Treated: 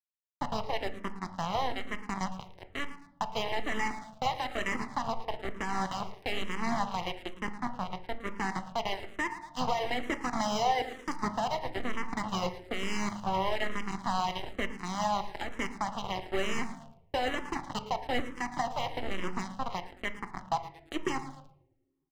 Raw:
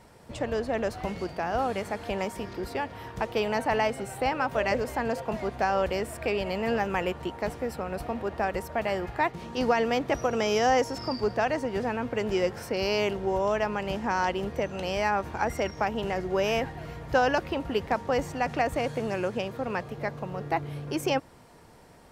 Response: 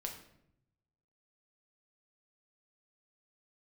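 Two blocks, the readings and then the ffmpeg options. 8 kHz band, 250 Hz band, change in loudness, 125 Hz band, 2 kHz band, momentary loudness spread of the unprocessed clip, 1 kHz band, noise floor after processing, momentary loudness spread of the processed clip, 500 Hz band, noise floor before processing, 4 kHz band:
−1.5 dB, −5.0 dB, −5.5 dB, −6.0 dB, −4.0 dB, 7 LU, −3.0 dB, −63 dBFS, 7 LU, −10.0 dB, −52 dBFS, −1.0 dB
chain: -filter_complex "[0:a]highpass=frequency=58:width=0.5412,highpass=frequency=58:width=1.3066,aresample=16000,acrusher=bits=3:mix=0:aa=0.5,aresample=44100,equalizer=frequency=88:width_type=o:width=1.9:gain=-8.5,aecho=1:1:1:0.65,aecho=1:1:111|222|333|444|555:0.211|0.112|0.0594|0.0315|0.0167,aeval=exprs='sgn(val(0))*max(abs(val(0))-0.00944,0)':channel_layout=same,alimiter=limit=-21.5dB:level=0:latency=1:release=483,asplit=2[link_01][link_02];[link_02]lowpass=frequency=1200:poles=1[link_03];[1:a]atrim=start_sample=2205[link_04];[link_03][link_04]afir=irnorm=-1:irlink=0,volume=3.5dB[link_05];[link_01][link_05]amix=inputs=2:normalize=0,asplit=2[link_06][link_07];[link_07]afreqshift=-1.1[link_08];[link_06][link_08]amix=inputs=2:normalize=1"

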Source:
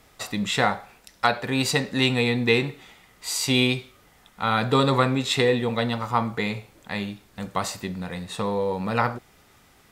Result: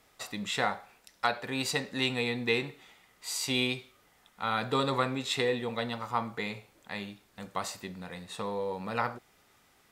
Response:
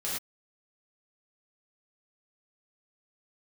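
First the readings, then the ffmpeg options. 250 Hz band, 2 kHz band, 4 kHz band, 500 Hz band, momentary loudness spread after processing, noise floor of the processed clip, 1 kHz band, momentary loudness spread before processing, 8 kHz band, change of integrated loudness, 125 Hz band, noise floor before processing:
−10.0 dB, −7.0 dB, −7.0 dB, −8.5 dB, 13 LU, −65 dBFS, −7.5 dB, 12 LU, −7.0 dB, −8.0 dB, −12.5 dB, −57 dBFS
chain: -af "lowshelf=frequency=210:gain=-7.5,volume=-7dB"

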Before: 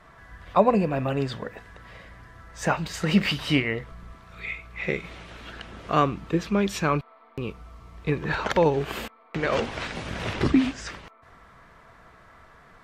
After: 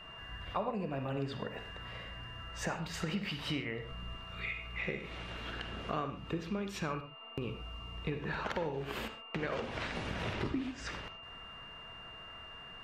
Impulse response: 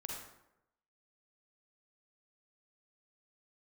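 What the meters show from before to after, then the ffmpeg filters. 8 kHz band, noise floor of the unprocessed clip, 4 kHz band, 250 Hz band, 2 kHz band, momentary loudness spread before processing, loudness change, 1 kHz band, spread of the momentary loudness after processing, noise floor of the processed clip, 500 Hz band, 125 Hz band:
−10.0 dB, −54 dBFS, −8.0 dB, −13.5 dB, −9.0 dB, 19 LU, −13.5 dB, −12.5 dB, 11 LU, −50 dBFS, −13.5 dB, −11.0 dB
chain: -filter_complex "[0:a]aeval=exprs='val(0)+0.00447*sin(2*PI*2800*n/s)':channel_layout=same,acompressor=threshold=-33dB:ratio=5,asplit=2[link_01][link_02];[1:a]atrim=start_sample=2205,atrim=end_sample=6615,lowpass=5500[link_03];[link_02][link_03]afir=irnorm=-1:irlink=0,volume=-0.5dB[link_04];[link_01][link_04]amix=inputs=2:normalize=0,volume=-5.5dB"

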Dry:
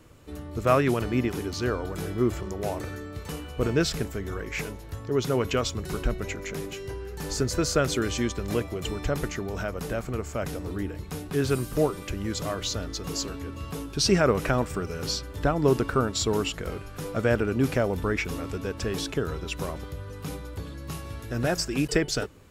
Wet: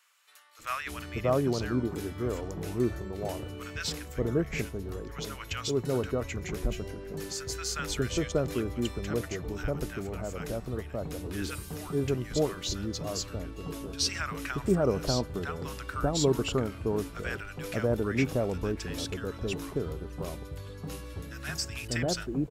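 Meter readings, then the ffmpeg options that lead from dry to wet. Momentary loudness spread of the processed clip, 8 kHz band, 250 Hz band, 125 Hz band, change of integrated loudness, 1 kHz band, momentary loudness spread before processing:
11 LU, −3.5 dB, −3.5 dB, −3.5 dB, −4.0 dB, −6.0 dB, 13 LU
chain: -filter_complex "[0:a]acrossover=split=1100[link_01][link_02];[link_01]adelay=590[link_03];[link_03][link_02]amix=inputs=2:normalize=0,volume=-3.5dB"

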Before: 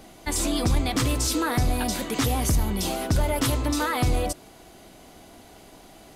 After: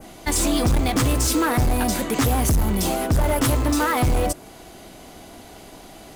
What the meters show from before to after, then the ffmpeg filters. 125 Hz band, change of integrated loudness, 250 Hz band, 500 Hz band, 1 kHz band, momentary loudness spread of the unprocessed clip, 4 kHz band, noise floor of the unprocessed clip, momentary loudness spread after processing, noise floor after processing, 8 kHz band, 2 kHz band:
+4.0 dB, +4.0 dB, +4.5 dB, +4.5 dB, +4.5 dB, 4 LU, +1.0 dB, −49 dBFS, 3 LU, −43 dBFS, +3.5 dB, +3.5 dB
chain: -filter_complex "[0:a]asplit=2[link_01][link_02];[link_02]acrusher=bits=3:mix=0:aa=0.000001,volume=-7dB[link_03];[link_01][link_03]amix=inputs=2:normalize=0,adynamicequalizer=threshold=0.00794:dfrequency=3900:dqfactor=1:tfrequency=3900:tqfactor=1:attack=5:release=100:ratio=0.375:range=2.5:mode=cutabove:tftype=bell,asoftclip=type=tanh:threshold=-21dB,volume=6dB"

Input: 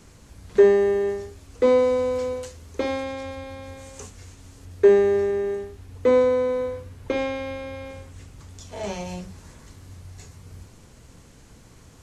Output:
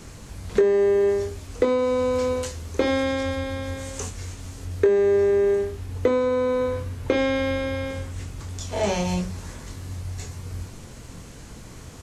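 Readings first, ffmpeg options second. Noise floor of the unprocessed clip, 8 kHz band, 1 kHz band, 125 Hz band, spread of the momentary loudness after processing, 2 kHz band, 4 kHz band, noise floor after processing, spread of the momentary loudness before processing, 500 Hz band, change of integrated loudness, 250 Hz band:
−50 dBFS, can't be measured, +1.5 dB, +8.0 dB, 20 LU, +3.5 dB, +6.0 dB, −42 dBFS, 22 LU, −0.5 dB, −1.5 dB, +2.5 dB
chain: -filter_complex "[0:a]acompressor=threshold=-25dB:ratio=6,asplit=2[link_01][link_02];[link_02]adelay=23,volume=-8dB[link_03];[link_01][link_03]amix=inputs=2:normalize=0,volume=7.5dB"

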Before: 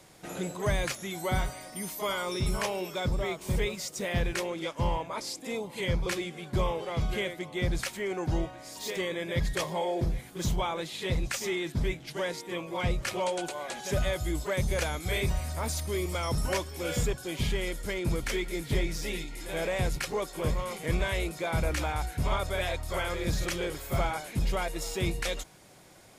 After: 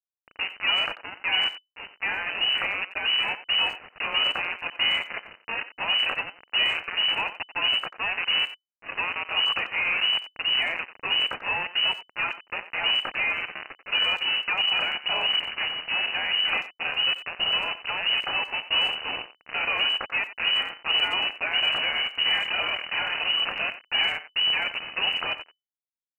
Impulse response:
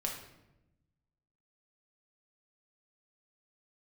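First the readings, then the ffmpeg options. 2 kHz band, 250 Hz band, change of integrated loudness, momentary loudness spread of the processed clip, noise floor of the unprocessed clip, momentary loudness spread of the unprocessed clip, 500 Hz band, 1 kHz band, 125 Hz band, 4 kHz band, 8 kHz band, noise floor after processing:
+11.0 dB, −13.5 dB, +7.5 dB, 7 LU, −48 dBFS, 4 LU, −8.5 dB, +3.0 dB, −21.0 dB, +17.0 dB, below −20 dB, −81 dBFS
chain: -filter_complex "[0:a]acrusher=bits=4:mix=0:aa=0.000001,lowpass=frequency=2600:width_type=q:width=0.5098,lowpass=frequency=2600:width_type=q:width=0.6013,lowpass=frequency=2600:width_type=q:width=0.9,lowpass=frequency=2600:width_type=q:width=2.563,afreqshift=-3000,asplit=2[link_01][link_02];[link_02]adelay=90,highpass=300,lowpass=3400,asoftclip=type=hard:threshold=-22.5dB,volume=-13dB[link_03];[link_01][link_03]amix=inputs=2:normalize=0,volume=3dB"

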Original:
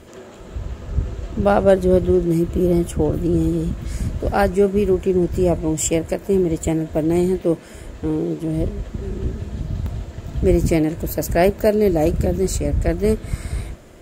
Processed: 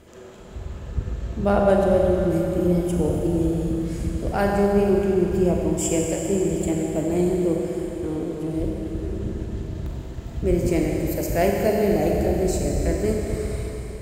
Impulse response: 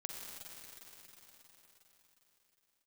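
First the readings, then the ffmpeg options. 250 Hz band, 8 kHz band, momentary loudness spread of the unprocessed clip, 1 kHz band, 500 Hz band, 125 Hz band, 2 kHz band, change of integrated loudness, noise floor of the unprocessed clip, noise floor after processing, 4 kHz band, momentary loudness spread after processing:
−3.0 dB, −3.0 dB, 13 LU, −2.5 dB, −3.0 dB, −3.0 dB, −3.0 dB, −3.0 dB, −40 dBFS, −36 dBFS, −3.0 dB, 12 LU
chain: -filter_complex "[1:a]atrim=start_sample=2205,asetrate=57330,aresample=44100[link_01];[0:a][link_01]afir=irnorm=-1:irlink=0"

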